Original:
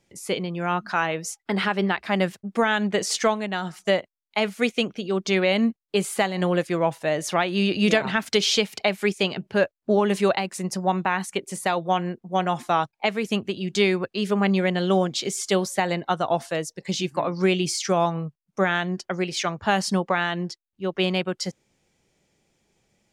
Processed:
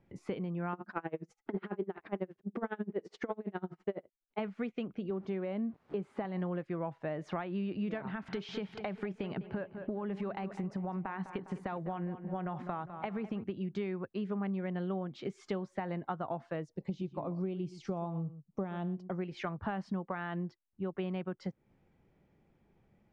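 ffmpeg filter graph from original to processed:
-filter_complex "[0:a]asettb=1/sr,asplit=3[s0][s1][s2];[s0]atrim=end=0.734[s3];[s1]atrim=start=0.73:end=4.39,asetpts=PTS-STARTPTS,afade=t=in:d=0.004:c=qsin,afade=t=out:st=3.656:d=0.004:c=qsin,equalizer=f=380:w=1.4:g=12,asplit=2[s4][s5];[s5]adelay=49,volume=0.266[s6];[s4][s6]amix=inputs=2:normalize=0,atrim=end_sample=161406,aeval=exprs='val(0)*pow(10,-30*(0.5-0.5*cos(2*PI*12*n/s))/20)':c=same[s7];[s2]atrim=start=4.386[s8];[s3][s7]acrossfade=d=0.004:c1=hsin:c2=qsin[s9];[s9][s8]acrossfade=d=0.004:c1=qsin:c2=hsin,asettb=1/sr,asplit=3[s10][s11][s12];[s10]atrim=end=5.104[s13];[s11]atrim=start=5.1:end=6.25,asetpts=PTS-STARTPTS,afade=t=in:d=0.004:c=qsin,afade=t=out:st=1.146:d=0.004:c=qsin,aeval=exprs='val(0)+0.5*0.0168*sgn(val(0))':c=same,highpass=f=350:p=1,tiltshelf=f=680:g=6.5[s14];[s12]atrim=start=6.246[s15];[s13][s14]acrossfade=d=0.004:c1=hsin:c2=qsin[s16];[s16][s15]acrossfade=d=0.004:c1=qsin:c2=hsin,asettb=1/sr,asplit=3[s17][s18][s19];[s17]atrim=end=8.084[s20];[s18]atrim=start=8.08:end=13.44,asetpts=PTS-STARTPTS,afade=t=in:d=0.004:c=qsin,afade=t=out:st=5.356:d=0.004:c=qsin,acompressor=threshold=0.0501:ratio=3:attack=3.2:release=140:knee=1:detection=peak,asplit=2[s21][s22];[s22]adelay=203,lowpass=f=3900:p=1,volume=0.2,asplit=2[s23][s24];[s24]adelay=203,lowpass=f=3900:p=1,volume=0.5,asplit=2[s25][s26];[s26]adelay=203,lowpass=f=3900:p=1,volume=0.5,asplit=2[s27][s28];[s28]adelay=203,lowpass=f=3900:p=1,volume=0.5,asplit=2[s29][s30];[s30]adelay=203,lowpass=f=3900:p=1,volume=0.5[s31];[s21][s23][s25][s27][s29][s31]amix=inputs=6:normalize=0,atrim=end_sample=236376[s32];[s19]atrim=start=13.436[s33];[s20][s32]acrossfade=d=0.004:c1=hsin:c2=qsin[s34];[s34][s33]acrossfade=d=0.004:c1=qsin:c2=hsin,asettb=1/sr,asplit=3[s35][s36][s37];[s35]atrim=end=16.754[s38];[s36]atrim=start=16.75:end=19.12,asetpts=PTS-STARTPTS,afade=t=in:d=0.004:c=qsin,afade=t=out:st=2.366:d=0.004:c=qsin,equalizer=f=1700:t=o:w=1.2:g=-14,aecho=1:1:121:0.133,atrim=end_sample=104517[s39];[s37]atrim=start=19.116[s40];[s38][s39]acrossfade=d=0.004:c1=hsin:c2=qsin[s41];[s41][s40]acrossfade=d=0.004:c1=qsin:c2=hsin,lowpass=1200,equalizer=f=560:t=o:w=1.6:g=-6,acompressor=threshold=0.0126:ratio=6,volume=1.5"

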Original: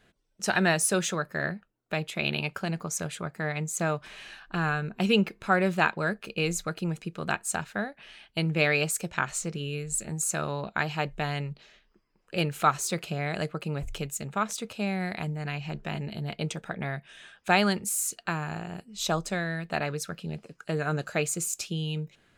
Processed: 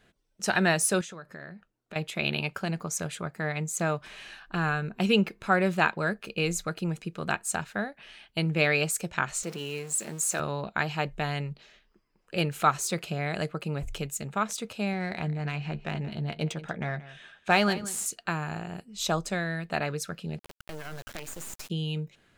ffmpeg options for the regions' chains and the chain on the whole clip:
-filter_complex "[0:a]asettb=1/sr,asplit=3[s0][s1][s2];[s0]atrim=end=1.014[s3];[s1]atrim=start=1.01:end=1.96,asetpts=PTS-STARTPTS,afade=t=in:d=0.004:c=qsin,afade=t=out:st=0.946:d=0.004:c=qsin,lowpass=10000,acompressor=threshold=0.00891:ratio=4:attack=3.2:release=140:knee=1:detection=peak[s4];[s2]atrim=start=1.956[s5];[s3][s4]acrossfade=d=0.004:c1=hsin:c2=qsin[s6];[s6][s5]acrossfade=d=0.004:c1=qsin:c2=hsin,asettb=1/sr,asplit=3[s7][s8][s9];[s7]atrim=end=9.434[s10];[s8]atrim=start=9.43:end=10.4,asetpts=PTS-STARTPTS,afade=t=in:d=0.004:c=qsin,afade=t=out:st=0.966:d=0.004:c=qsin,aeval=exprs='val(0)+0.5*0.0112*sgn(val(0))':c=same,highpass=240[s11];[s9]atrim=start=10.396[s12];[s10][s11]acrossfade=d=0.004:c1=hsin:c2=qsin[s13];[s13][s12]acrossfade=d=0.004:c1=qsin:c2=hsin,asettb=1/sr,asplit=3[s14][s15][s16];[s14]atrim=end=14.924[s17];[s15]atrim=start=14.92:end=18.06,asetpts=PTS-STARTPTS,afade=t=in:d=0.004:c=qsin,afade=t=out:st=3.136:d=0.004:c=qsin,adynamicsmooth=sensitivity=5.5:basefreq=5500,asplit=2[s18][s19];[s19]adelay=13,volume=0.237[s20];[s18][s20]amix=inputs=2:normalize=0,atrim=end_sample=138474,aecho=1:1:179:0.15,atrim=end_sample=138474[s21];[s16]atrim=start=18.056[s22];[s17][s21]acrossfade=d=0.004:c1=hsin:c2=qsin[s23];[s23][s22]acrossfade=d=0.004:c1=qsin:c2=hsin,asettb=1/sr,asplit=3[s24][s25][s26];[s24]atrim=end=20.394[s27];[s25]atrim=start=20.39:end=21.7,asetpts=PTS-STARTPTS,afade=t=in:d=0.004:c=qsin,afade=t=out:st=1.306:d=0.004:c=qsin,acrusher=bits=4:dc=4:mix=0:aa=0.000001,acompressor=threshold=0.02:ratio=5:attack=3.2:release=140:knee=1:detection=peak[s28];[s26]atrim=start=21.696[s29];[s27][s28]acrossfade=d=0.004:c1=hsin:c2=qsin[s30];[s30][s29]acrossfade=d=0.004:c1=qsin:c2=hsin"

